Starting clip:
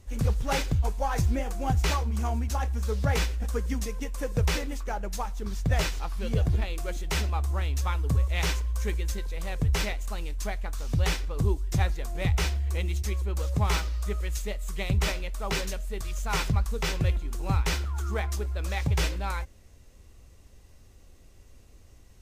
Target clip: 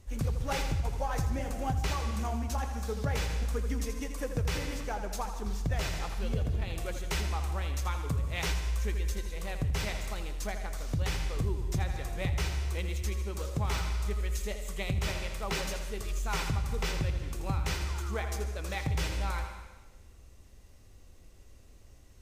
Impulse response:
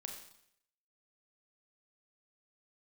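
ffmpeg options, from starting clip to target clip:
-filter_complex "[0:a]asplit=2[link_01][link_02];[1:a]atrim=start_sample=2205,asetrate=26460,aresample=44100,adelay=82[link_03];[link_02][link_03]afir=irnorm=-1:irlink=0,volume=-7dB[link_04];[link_01][link_04]amix=inputs=2:normalize=0,acompressor=threshold=-25dB:ratio=3,volume=-2.5dB"

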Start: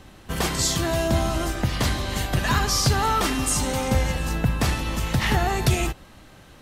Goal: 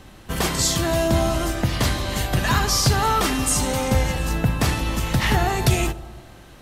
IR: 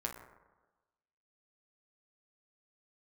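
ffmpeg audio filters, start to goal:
-filter_complex "[0:a]asplit=2[link_01][link_02];[1:a]atrim=start_sample=2205,asetrate=27342,aresample=44100,highshelf=frequency=10000:gain=10[link_03];[link_02][link_03]afir=irnorm=-1:irlink=0,volume=-13dB[link_04];[link_01][link_04]amix=inputs=2:normalize=0"

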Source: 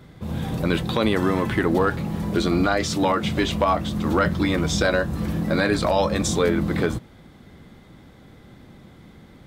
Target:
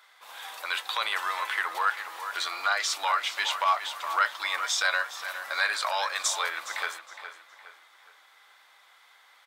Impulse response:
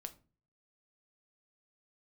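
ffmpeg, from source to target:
-filter_complex "[0:a]highpass=frequency=940:width=0.5412,highpass=frequency=940:width=1.3066,asplit=2[link_01][link_02];[link_02]adelay=414,lowpass=frequency=4000:poles=1,volume=-10dB,asplit=2[link_03][link_04];[link_04]adelay=414,lowpass=frequency=4000:poles=1,volume=0.42,asplit=2[link_05][link_06];[link_06]adelay=414,lowpass=frequency=4000:poles=1,volume=0.42,asplit=2[link_07][link_08];[link_08]adelay=414,lowpass=frequency=4000:poles=1,volume=0.42[link_09];[link_03][link_05][link_07][link_09]amix=inputs=4:normalize=0[link_10];[link_01][link_10]amix=inputs=2:normalize=0"

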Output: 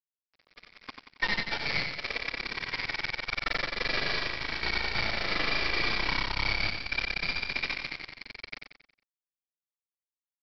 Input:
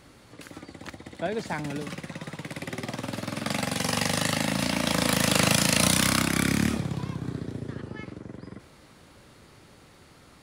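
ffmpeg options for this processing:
ffmpeg -i in.wav -af "afftfilt=real='re*pow(10,20/40*sin(2*PI*(1.5*log(max(b,1)*sr/1024/100)/log(2)-(0.59)*(pts-256)/sr)))':imag='im*pow(10,20/40*sin(2*PI*(1.5*log(max(b,1)*sr/1024/100)/log(2)-(0.59)*(pts-256)/sr)))':win_size=1024:overlap=0.75,lowpass=frequency=2100:width_type=q:width=0.5098,lowpass=frequency=2100:width_type=q:width=0.6013,lowpass=frequency=2100:width_type=q:width=0.9,lowpass=frequency=2100:width_type=q:width=2.563,afreqshift=-2500,aeval=exprs='(tanh(4.47*val(0)+0.8)-tanh(0.8))/4.47':channel_layout=same,acompressor=threshold=-38dB:ratio=6,lowshelf=frequency=400:gain=2.5,bandreject=frequency=750:width=12,flanger=delay=3.9:depth=8:regen=49:speed=0.85:shape=triangular,aresample=11025,acrusher=bits=6:mix=0:aa=0.000001,aresample=44100,agate=range=-19dB:threshold=-43dB:ratio=16:detection=peak,dynaudnorm=framelen=130:gausssize=13:maxgain=14.5dB,aecho=1:1:91|182|273|364|455:0.501|0.216|0.0927|0.0398|0.0171" out.wav

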